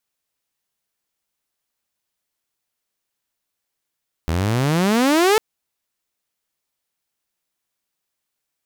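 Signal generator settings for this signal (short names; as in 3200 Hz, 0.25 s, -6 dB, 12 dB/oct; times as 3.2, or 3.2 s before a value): gliding synth tone saw, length 1.10 s, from 77.2 Hz, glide +30.5 st, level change +6.5 dB, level -9.5 dB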